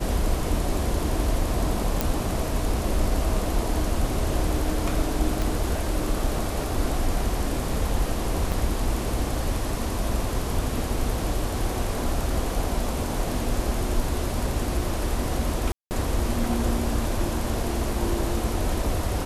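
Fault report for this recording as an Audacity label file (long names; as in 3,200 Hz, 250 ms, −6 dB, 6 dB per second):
2.010000	2.010000	click
5.420000	5.420000	click
8.520000	8.520000	drop-out 3.1 ms
15.720000	15.910000	drop-out 189 ms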